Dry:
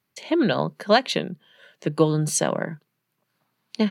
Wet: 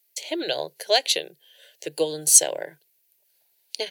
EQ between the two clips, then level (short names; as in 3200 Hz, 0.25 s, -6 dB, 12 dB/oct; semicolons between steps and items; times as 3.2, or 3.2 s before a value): RIAA curve recording; bell 240 Hz -9.5 dB 0.39 oct; fixed phaser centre 490 Hz, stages 4; 0.0 dB